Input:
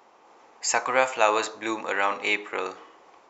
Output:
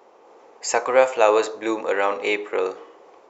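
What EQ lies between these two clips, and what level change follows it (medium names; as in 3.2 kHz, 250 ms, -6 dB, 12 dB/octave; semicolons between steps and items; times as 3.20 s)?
peaking EQ 460 Hz +11.5 dB 1.1 oct; -1.0 dB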